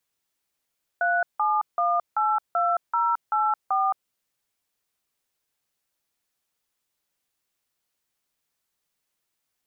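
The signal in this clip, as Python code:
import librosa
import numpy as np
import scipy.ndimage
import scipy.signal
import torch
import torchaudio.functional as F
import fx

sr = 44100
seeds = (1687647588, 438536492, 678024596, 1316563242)

y = fx.dtmf(sr, digits='37182084', tone_ms=219, gap_ms=166, level_db=-22.5)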